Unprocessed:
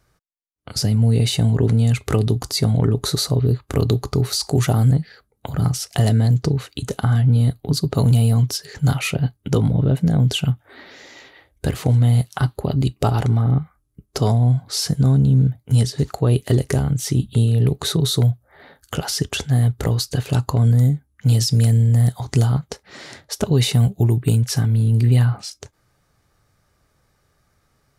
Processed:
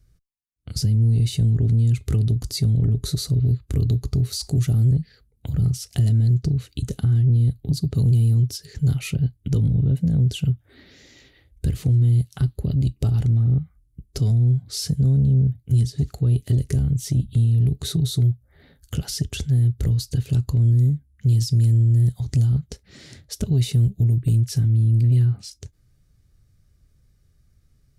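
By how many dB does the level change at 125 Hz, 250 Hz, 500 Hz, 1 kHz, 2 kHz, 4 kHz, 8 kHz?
-1.5 dB, -4.5 dB, -12.0 dB, under -15 dB, under -10 dB, -8.0 dB, -7.0 dB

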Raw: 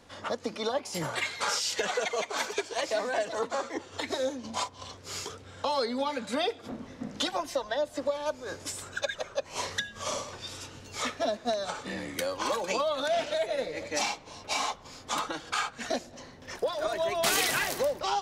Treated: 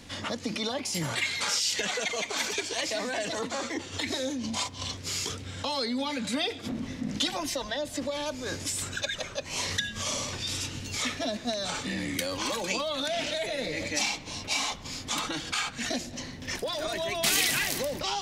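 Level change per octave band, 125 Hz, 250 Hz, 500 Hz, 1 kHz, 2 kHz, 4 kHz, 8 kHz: +7.5 dB, +4.5 dB, -3.5 dB, -3.5 dB, +2.0 dB, +4.5 dB, +4.5 dB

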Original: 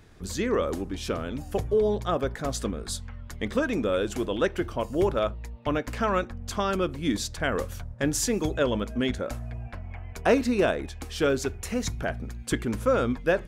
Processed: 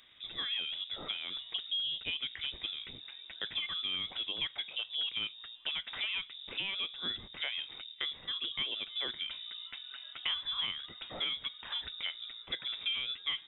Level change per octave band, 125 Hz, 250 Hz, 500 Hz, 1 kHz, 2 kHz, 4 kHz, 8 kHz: -27.0 dB, -28.5 dB, -29.5 dB, -18.5 dB, -7.0 dB, +7.0 dB, under -40 dB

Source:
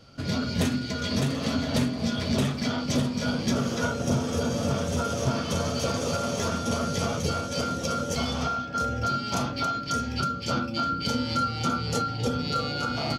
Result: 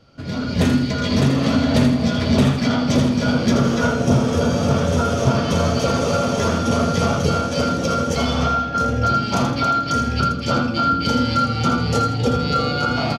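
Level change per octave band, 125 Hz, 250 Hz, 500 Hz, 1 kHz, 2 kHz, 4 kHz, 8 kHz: +9.5 dB, +9.5 dB, +9.0 dB, +8.5 dB, +8.0 dB, +5.5 dB, +3.0 dB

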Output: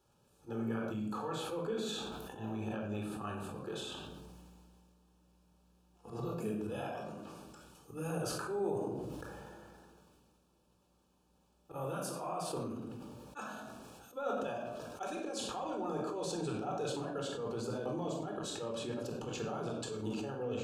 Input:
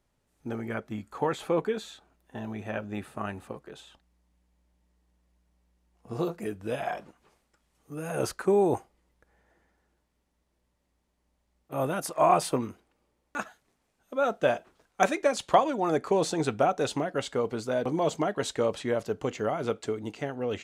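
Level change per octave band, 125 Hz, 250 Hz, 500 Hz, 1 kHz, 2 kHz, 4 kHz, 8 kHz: -5.0 dB, -6.5 dB, -10.5 dB, -12.5 dB, -11.5 dB, -4.5 dB, -6.5 dB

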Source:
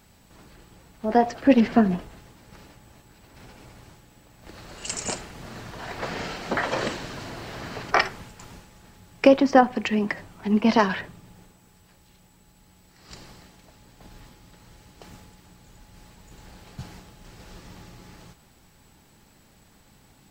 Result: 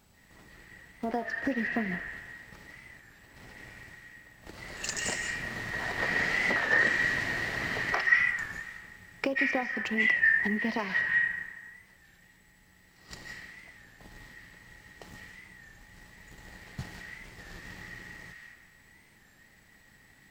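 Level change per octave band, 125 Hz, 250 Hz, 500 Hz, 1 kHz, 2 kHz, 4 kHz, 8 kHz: -7.5 dB, -12.5 dB, -13.0 dB, -12.0 dB, +6.5 dB, -4.5 dB, -3.5 dB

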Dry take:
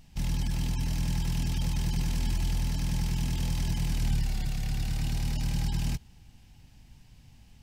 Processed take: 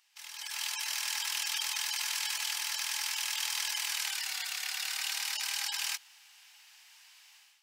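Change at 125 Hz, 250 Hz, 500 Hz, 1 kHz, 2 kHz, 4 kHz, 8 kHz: under -40 dB, under -40 dB, under -10 dB, +1.5 dB, +9.0 dB, +9.0 dB, +9.0 dB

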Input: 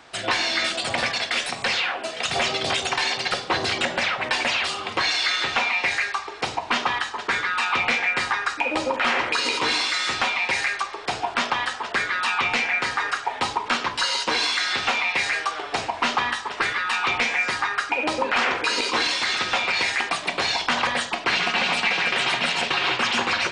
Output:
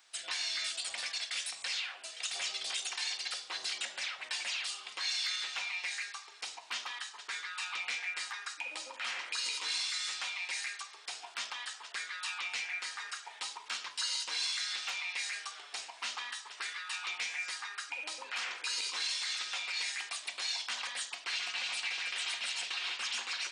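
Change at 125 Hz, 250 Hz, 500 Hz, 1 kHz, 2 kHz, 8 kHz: under -35 dB, under -30 dB, -27.0 dB, -21.5 dB, -15.5 dB, -5.5 dB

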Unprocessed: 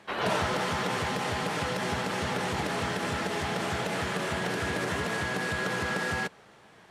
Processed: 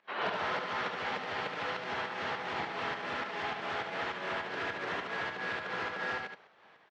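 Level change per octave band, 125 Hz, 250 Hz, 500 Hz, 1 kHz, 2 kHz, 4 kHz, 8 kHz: -16.0 dB, -12.0 dB, -7.0 dB, -4.0 dB, -4.0 dB, -6.0 dB, -19.0 dB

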